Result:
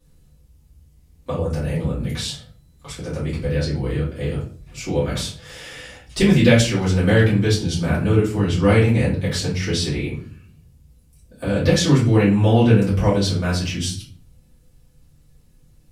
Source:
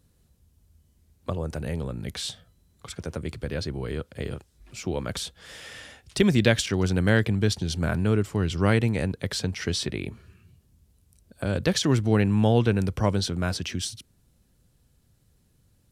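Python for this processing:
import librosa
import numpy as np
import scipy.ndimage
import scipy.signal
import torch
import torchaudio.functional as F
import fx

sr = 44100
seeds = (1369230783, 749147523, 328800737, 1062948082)

y = fx.room_shoebox(x, sr, seeds[0], volume_m3=32.0, walls='mixed', distance_m=1.9)
y = y * 10.0 ** (-5.0 / 20.0)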